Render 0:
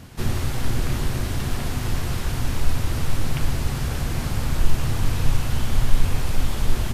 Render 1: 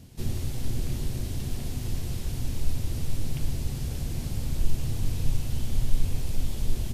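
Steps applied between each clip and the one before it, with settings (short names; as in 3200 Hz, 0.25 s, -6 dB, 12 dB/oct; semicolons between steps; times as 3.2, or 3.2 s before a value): bell 1300 Hz -13.5 dB 1.8 oct; gain -5.5 dB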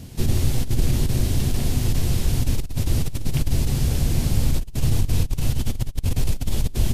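negative-ratio compressor -25 dBFS, ratio -0.5; gain +7.5 dB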